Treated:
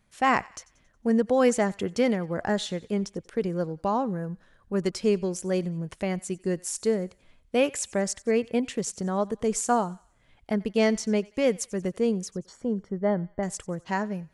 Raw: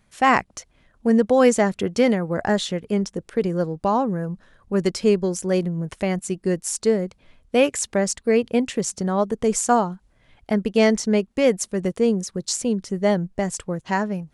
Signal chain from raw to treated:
0:12.36–0:13.43: Savitzky-Golay smoothing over 41 samples
on a send: feedback echo with a high-pass in the loop 91 ms, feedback 49%, high-pass 1,000 Hz, level −20.5 dB
on the sum: level −5.5 dB

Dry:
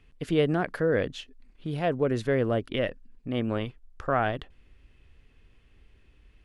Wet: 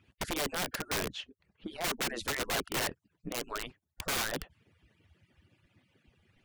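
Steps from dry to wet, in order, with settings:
harmonic-percussive split with one part muted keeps percussive
wrap-around overflow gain 28.5 dB
0:01.12–0:01.84: high-shelf EQ 6,300 Hz −12 dB
level +2 dB

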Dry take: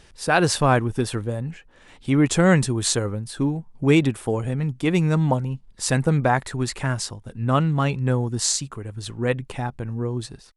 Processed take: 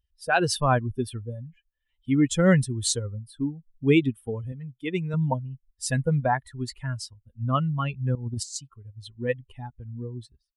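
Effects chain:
spectral dynamics exaggerated over time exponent 2
0:04.52–0:05.14: low-shelf EQ 160 Hz −11 dB
0:08.15–0:08.56: compressor whose output falls as the input rises −32 dBFS, ratio −0.5

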